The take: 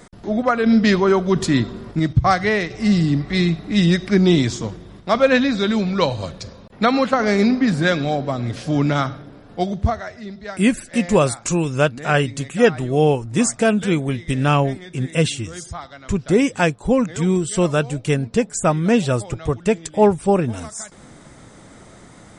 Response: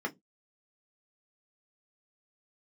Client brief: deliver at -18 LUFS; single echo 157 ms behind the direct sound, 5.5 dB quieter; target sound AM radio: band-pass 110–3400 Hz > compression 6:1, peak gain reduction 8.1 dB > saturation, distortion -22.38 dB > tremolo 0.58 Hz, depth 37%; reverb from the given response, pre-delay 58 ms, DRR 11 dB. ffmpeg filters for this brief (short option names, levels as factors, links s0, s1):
-filter_complex "[0:a]aecho=1:1:157:0.531,asplit=2[s0][s1];[1:a]atrim=start_sample=2205,adelay=58[s2];[s1][s2]afir=irnorm=-1:irlink=0,volume=0.158[s3];[s0][s3]amix=inputs=2:normalize=0,highpass=110,lowpass=3400,acompressor=threshold=0.158:ratio=6,asoftclip=threshold=0.282,tremolo=f=0.58:d=0.37,volume=2.11"